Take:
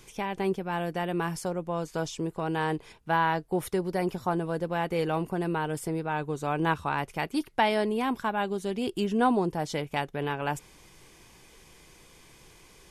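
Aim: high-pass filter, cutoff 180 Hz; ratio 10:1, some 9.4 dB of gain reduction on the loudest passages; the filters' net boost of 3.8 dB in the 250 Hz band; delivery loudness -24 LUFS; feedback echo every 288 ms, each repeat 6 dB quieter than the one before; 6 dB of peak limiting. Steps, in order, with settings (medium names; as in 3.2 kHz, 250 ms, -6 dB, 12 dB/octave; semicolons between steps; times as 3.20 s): high-pass 180 Hz; peaking EQ 250 Hz +7 dB; compression 10:1, threshold -26 dBFS; peak limiter -22 dBFS; feedback delay 288 ms, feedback 50%, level -6 dB; trim +8 dB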